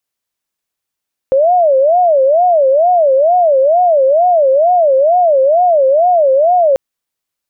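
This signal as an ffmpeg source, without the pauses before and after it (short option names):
-f lavfi -i "aevalsrc='0.473*sin(2*PI*(626*t-100/(2*PI*2.2)*sin(2*PI*2.2*t)))':d=5.44:s=44100"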